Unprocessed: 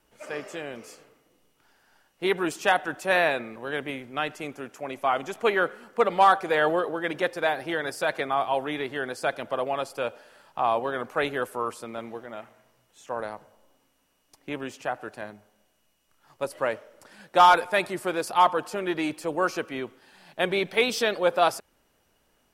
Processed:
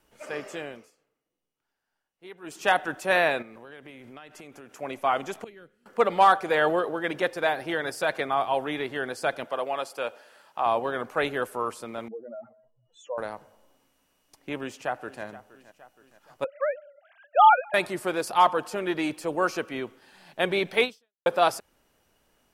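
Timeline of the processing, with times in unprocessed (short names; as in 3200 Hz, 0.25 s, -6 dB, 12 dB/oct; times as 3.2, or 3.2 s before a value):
0.62–2.71 dip -20 dB, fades 0.29 s
3.42–4.73 compressor, threshold -42 dBFS
5.44–5.86 passive tone stack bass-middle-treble 10-0-1
9.44–10.66 HPF 420 Hz 6 dB/oct
12.08–13.18 spectral contrast raised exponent 3.1
14.59–15.24 echo throw 0.47 s, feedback 55%, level -17 dB
16.44–17.74 sine-wave speech
20.84–21.26 fade out exponential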